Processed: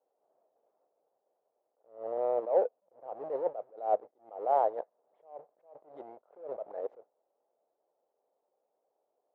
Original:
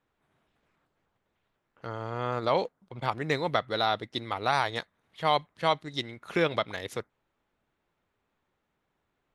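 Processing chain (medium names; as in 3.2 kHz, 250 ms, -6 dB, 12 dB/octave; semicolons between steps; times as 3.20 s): square wave that keeps the level; Butterworth band-pass 600 Hz, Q 1.9; attacks held to a fixed rise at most 150 dB/s; trim +2.5 dB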